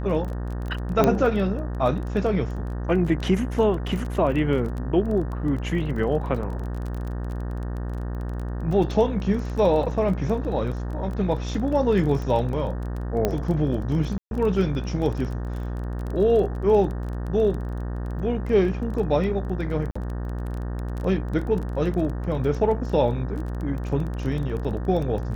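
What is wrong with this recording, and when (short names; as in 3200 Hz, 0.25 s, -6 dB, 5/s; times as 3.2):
buzz 60 Hz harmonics 31 -29 dBFS
crackle 21/s -30 dBFS
1.04 pop -7 dBFS
13.25 pop -9 dBFS
14.18–14.31 gap 0.131 s
19.91–19.95 gap 45 ms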